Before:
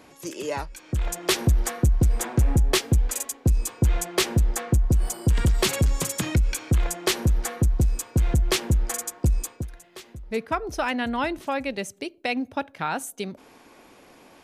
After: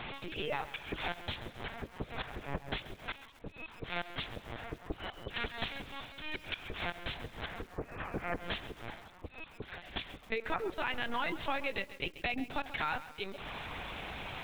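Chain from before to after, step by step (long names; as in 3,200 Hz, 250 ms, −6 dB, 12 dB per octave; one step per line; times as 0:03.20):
0:05.73–0:06.18: lower of the sound and its delayed copy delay 5.9 ms
0:07.65–0:08.40: low-pass filter 2,100 Hz 24 dB per octave
speech leveller within 4 dB 0.5 s
brickwall limiter −19.5 dBFS, peak gain reduction 9.5 dB
linear-phase brick-wall high-pass 180 Hz
spectral tilt +3.5 dB per octave
gate on every frequency bin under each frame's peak −30 dB strong
0:10.01–0:10.50: low-shelf EQ 350 Hz −7 dB
downward compressor 20 to 1, threshold −36 dBFS, peak gain reduction 20 dB
linear-prediction vocoder at 8 kHz pitch kept
feedback echo at a low word length 135 ms, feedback 55%, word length 9 bits, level −14 dB
level +6 dB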